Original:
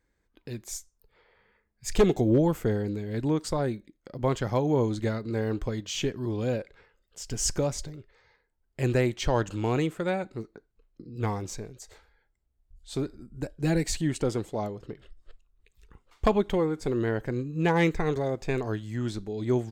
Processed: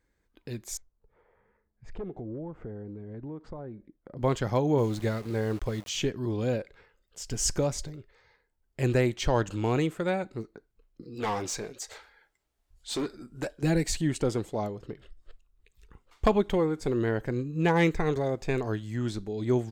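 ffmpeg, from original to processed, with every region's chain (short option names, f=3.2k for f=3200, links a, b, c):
-filter_complex "[0:a]asettb=1/sr,asplit=3[a][b][c];[a]atrim=end=0.774[d];[b]atrim=start=0.77:end=4.17,asetpts=PTS-STARTPTS,afade=t=in:d=0.004:c=qsin,afade=t=out:st=3.396:d=0.004:c=qsin,lowpass=1.2k,acompressor=threshold=-40dB:ratio=3:attack=3.2:release=140:knee=1:detection=peak[e];[c]atrim=start=4.166[f];[d][e]acrossfade=d=0.004:c1=hsin:c2=qsin[g];[g][f]acrossfade=d=0.004:c1=qsin:c2=hsin,asettb=1/sr,asplit=3[h][i][j];[h]atrim=end=4.784[k];[i]atrim=start=4.78:end=5.89,asetpts=PTS-STARTPTS,afade=t=in:d=0.004:c=qsin,afade=t=out:st=1.106:d=0.004:c=qsin,equalizer=f=270:w=7.4:g=-12,aeval=exprs='val(0)*gte(abs(val(0)),0.0075)':c=same[l];[j]atrim=start=5.886[m];[k][l]acrossfade=d=0.004:c1=hsin:c2=qsin[n];[n][m]acrossfade=d=0.004:c1=qsin:c2=hsin,asettb=1/sr,asplit=3[o][p][q];[o]atrim=end=11.024[r];[p]atrim=start=11.02:end=13.63,asetpts=PTS-STARTPTS,afade=t=in:d=0.004:c=qsin,afade=t=out:st=2.606:d=0.004:c=qsin,flanger=delay=1.2:depth=6.5:regen=-45:speed=1.1:shape=triangular,asplit=2[s][t];[t]highpass=f=720:p=1,volume=20dB,asoftclip=type=tanh:threshold=-21.5dB[u];[s][u]amix=inputs=2:normalize=0,lowpass=f=7.9k:p=1,volume=-6dB[v];[q]atrim=start=13.626[w];[r][v]acrossfade=d=0.004:c1=hsin:c2=qsin[x];[x][w]acrossfade=d=0.004:c1=qsin:c2=hsin"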